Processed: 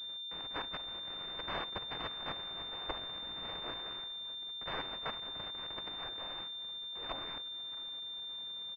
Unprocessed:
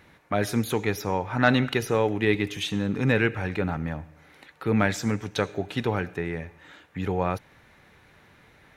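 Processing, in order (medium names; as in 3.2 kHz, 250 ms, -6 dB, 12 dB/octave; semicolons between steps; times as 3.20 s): block-companded coder 3-bit; saturation -23 dBFS, distortion -8 dB; 2.93–3.83 s: bass shelf 490 Hz -6.5 dB; level held to a coarse grid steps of 14 dB; 0.77–1.19 s: expander -39 dBFS; 6.44–7.02 s: compression 2.5:1, threshold -47 dBFS, peak gain reduction 5 dB; peaking EQ 180 Hz +15 dB 0.21 oct; on a send: feedback delay 623 ms, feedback 52%, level -20 dB; on the sum: spectral gate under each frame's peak -25 dB weak; class-D stage that switches slowly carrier 3.6 kHz; trim +7 dB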